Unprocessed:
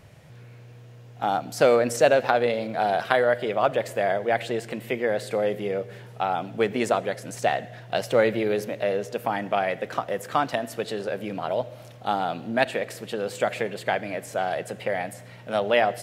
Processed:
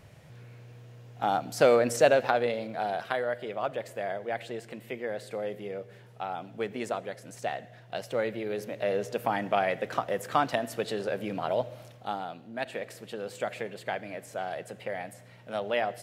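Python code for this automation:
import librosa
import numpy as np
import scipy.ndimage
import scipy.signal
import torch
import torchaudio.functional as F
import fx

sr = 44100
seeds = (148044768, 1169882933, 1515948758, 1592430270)

y = fx.gain(x, sr, db=fx.line((2.03, -2.5), (3.2, -9.5), (8.44, -9.5), (9.01, -2.0), (11.73, -2.0), (12.5, -14.5), (12.77, -8.0)))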